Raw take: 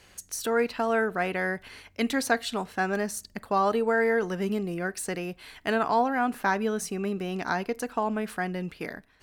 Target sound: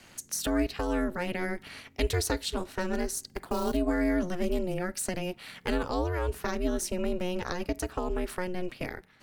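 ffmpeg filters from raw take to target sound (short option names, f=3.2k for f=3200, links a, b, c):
-filter_complex "[0:a]asettb=1/sr,asplit=3[a][b][c];[a]atrim=end=3.234[d];[b]atrim=start=3.23:end=3.77,asetpts=PTS-STARTPTS,afade=t=in:d=0.004:c=qsin,afade=t=out:st=0.536:d=0.004:c=qsin,acrusher=bits=6:mode=log:mix=0:aa=0.000001[e];[c]atrim=start=3.766[f];[d][e]acrossfade=d=0.004:c1=hsin:c2=qsin[g];[g][f]acrossfade=d=0.004:c1=qsin:c2=hsin,aeval=exprs='val(0)*sin(2*PI*180*n/s)':c=same,acrossover=split=430|3000[h][i][j];[i]acompressor=threshold=-40dB:ratio=6[k];[h][k][j]amix=inputs=3:normalize=0,volume=4.5dB"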